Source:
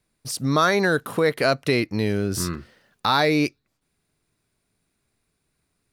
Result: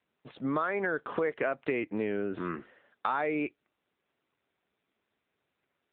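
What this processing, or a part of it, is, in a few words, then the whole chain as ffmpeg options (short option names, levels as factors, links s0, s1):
voicemail: -filter_complex "[0:a]asettb=1/sr,asplit=3[s0][s1][s2];[s0]atrim=end=0.754[s3];[s1]atrim=start=0.75:end=1.23,asetpts=PTS-STARTPTS,afade=t=in:d=0.004:c=qsin,afade=t=out:st=0.476:d=0.004:c=qsin,highshelf=f=3600:g=3.5[s4];[s2]atrim=start=1.226[s5];[s3][s4]acrossfade=d=0.004:c1=hsin:c2=qsin[s6];[s6][s5]acrossfade=d=0.004:c1=qsin:c2=hsin,highpass=300,lowpass=2600,acompressor=threshold=0.0501:ratio=6" -ar 8000 -c:a libopencore_amrnb -b:a 7950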